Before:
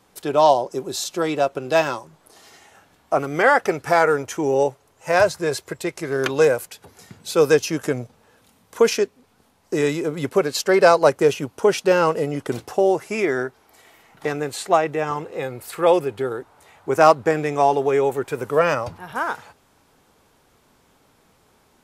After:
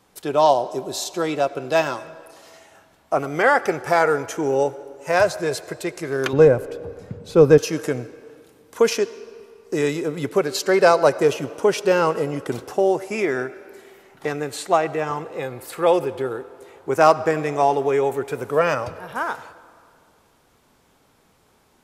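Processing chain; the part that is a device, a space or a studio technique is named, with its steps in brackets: filtered reverb send (on a send: HPF 250 Hz 12 dB/oct + LPF 8500 Hz + reverb RT60 2.1 s, pre-delay 67 ms, DRR 16 dB); 6.33–7.58 on the sum: tilt -4 dB/oct; gain -1 dB

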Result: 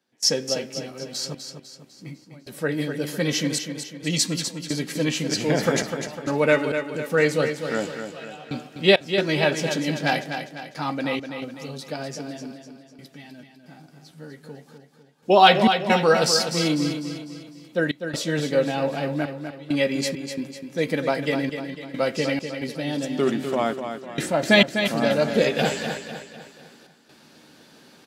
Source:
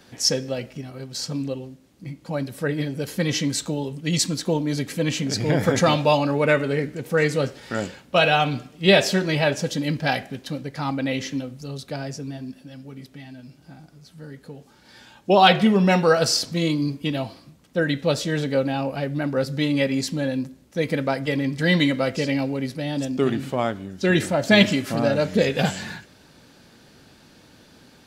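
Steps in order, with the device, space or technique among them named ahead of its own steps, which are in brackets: HPF 190 Hz 12 dB/oct; doubler 13 ms -11 dB; trance gate with a delay (step gate ".xxxxx..xx" 67 bpm -24 dB; feedback echo 0.25 s, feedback 46%, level -8 dB)

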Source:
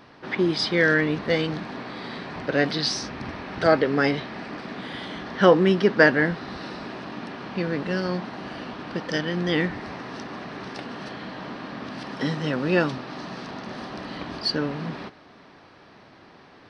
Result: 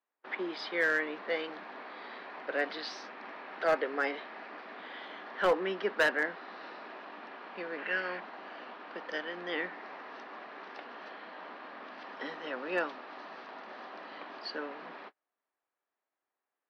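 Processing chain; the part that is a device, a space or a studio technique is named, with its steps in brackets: steep high-pass 180 Hz 48 dB/oct; 7.78–8.2 band shelf 2100 Hz +9.5 dB 1.2 oct; walkie-talkie (BPF 530–2700 Hz; hard clip -13.5 dBFS, distortion -15 dB; gate -41 dBFS, range -31 dB); gain -6.5 dB

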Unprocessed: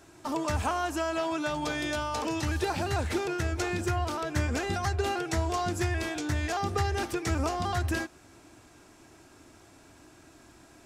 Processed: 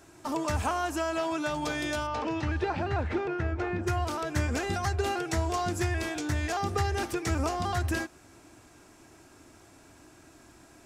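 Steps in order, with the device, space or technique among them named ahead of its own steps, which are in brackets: 2.06–3.86 LPF 3600 Hz -> 1800 Hz 12 dB/oct; exciter from parts (in parallel at -13.5 dB: HPF 3300 Hz 24 dB/oct + soft clip -40 dBFS, distortion -10 dB)

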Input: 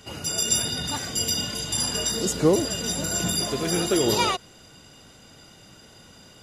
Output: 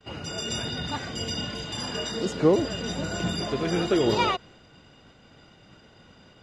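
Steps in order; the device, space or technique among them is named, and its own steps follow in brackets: hearing-loss simulation (LPF 3300 Hz 12 dB/oct; expander -48 dBFS); 1.64–2.59 low shelf 74 Hz -11 dB

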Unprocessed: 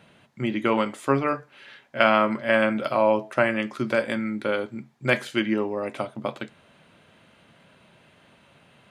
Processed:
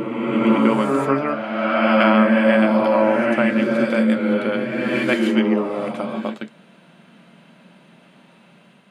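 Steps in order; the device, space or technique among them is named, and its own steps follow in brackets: resonant low shelf 130 Hz -11.5 dB, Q 3; reverse reverb (reverse; reverb RT60 2.5 s, pre-delay 85 ms, DRR -2 dB; reverse)

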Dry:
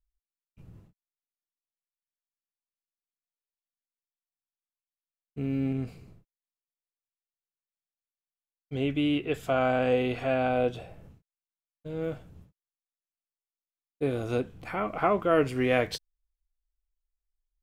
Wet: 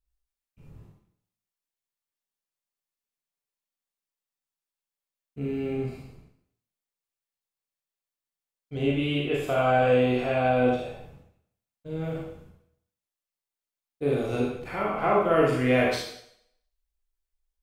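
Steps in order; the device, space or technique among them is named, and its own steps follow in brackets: bathroom (reverb RT60 0.70 s, pre-delay 26 ms, DRR -4 dB); gain -2 dB

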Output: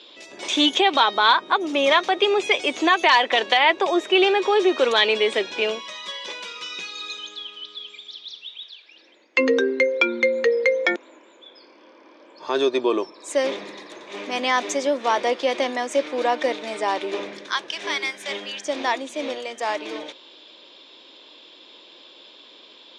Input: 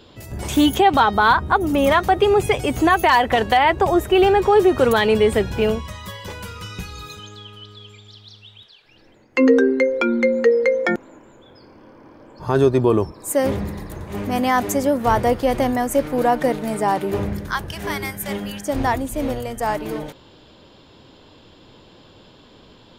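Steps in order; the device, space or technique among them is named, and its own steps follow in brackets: phone speaker on a table (speaker cabinet 340–6900 Hz, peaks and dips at 440 Hz -5 dB, 780 Hz -6 dB, 1400 Hz -4 dB, 2400 Hz +6 dB, 3600 Hz +10 dB, 5800 Hz +4 dB)

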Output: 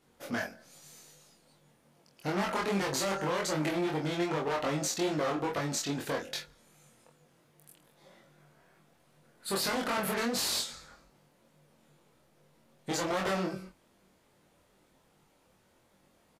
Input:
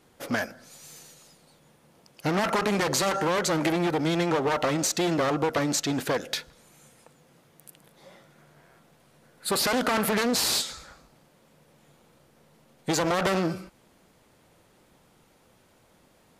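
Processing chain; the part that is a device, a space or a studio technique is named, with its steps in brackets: double-tracked vocal (doubler 26 ms -5 dB; chorus 2.5 Hz, delay 20 ms, depth 3 ms); gain -4.5 dB

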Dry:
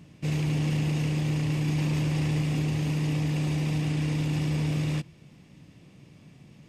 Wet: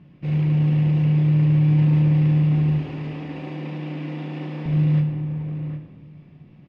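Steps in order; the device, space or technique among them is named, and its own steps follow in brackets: shout across a valley (air absorption 350 m; outdoor echo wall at 130 m, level -7 dB); 2.78–4.66 HPF 230 Hz 24 dB/oct; shoebox room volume 730 m³, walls mixed, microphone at 0.96 m

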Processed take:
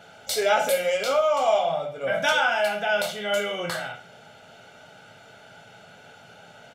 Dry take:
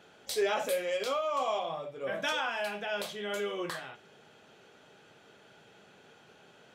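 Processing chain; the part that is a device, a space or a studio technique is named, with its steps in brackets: microphone above a desk (comb 1.4 ms, depth 64%; reverb RT60 0.45 s, pre-delay 3 ms, DRR 6 dB); gain +7 dB

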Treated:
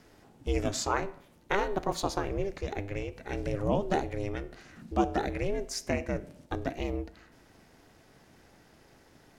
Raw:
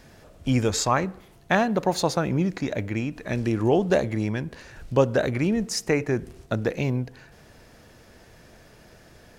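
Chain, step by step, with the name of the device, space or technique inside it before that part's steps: alien voice (ring modulator 200 Hz; flange 0.28 Hz, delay 9.8 ms, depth 5.2 ms, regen -85%)

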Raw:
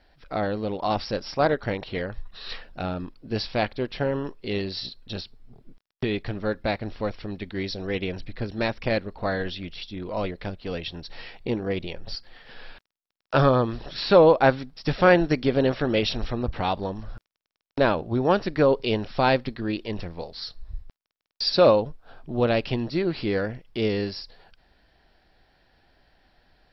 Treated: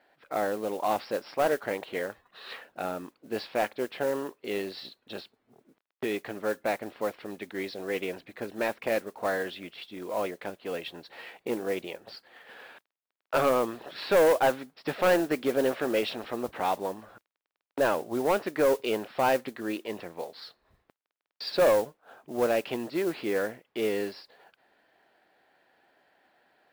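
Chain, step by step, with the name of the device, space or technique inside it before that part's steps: carbon microphone (BPF 340–2600 Hz; soft clip -16.5 dBFS, distortion -11 dB; modulation noise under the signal 20 dB)

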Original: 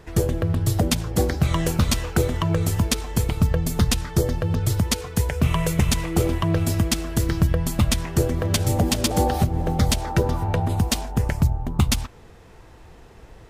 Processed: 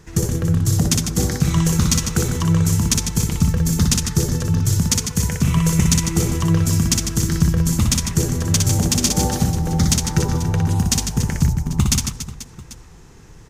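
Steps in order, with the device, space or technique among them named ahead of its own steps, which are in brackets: fifteen-band EQ 160 Hz +6 dB, 630 Hz -9 dB, 6300 Hz +10 dB; reverse bouncing-ball echo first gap 60 ms, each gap 1.5×, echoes 5; exciter from parts (in parallel at -9.5 dB: HPF 2100 Hz + soft clip -12 dBFS, distortion -14 dB + HPF 3500 Hz 12 dB/oct); on the sum: gain -1 dB

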